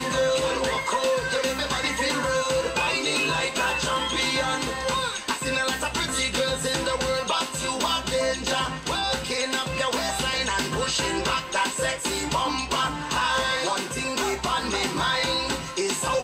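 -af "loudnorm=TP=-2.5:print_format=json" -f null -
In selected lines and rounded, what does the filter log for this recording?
"input_i" : "-24.6",
"input_tp" : "-13.8",
"input_lra" : "1.2",
"input_thresh" : "-34.6",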